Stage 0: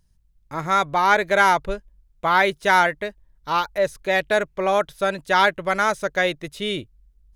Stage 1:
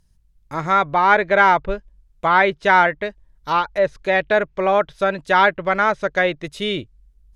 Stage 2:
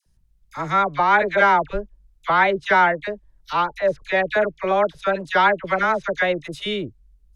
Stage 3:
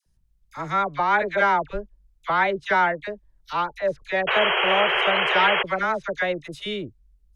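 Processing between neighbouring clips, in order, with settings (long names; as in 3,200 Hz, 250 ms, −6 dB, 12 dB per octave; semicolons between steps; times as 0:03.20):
treble cut that deepens with the level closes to 2,800 Hz, closed at −18 dBFS; level +3 dB
all-pass dispersion lows, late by 63 ms, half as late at 1,100 Hz; level −2 dB
sound drawn into the spectrogram noise, 0:04.27–0:05.63, 360–3,300 Hz −18 dBFS; level −4 dB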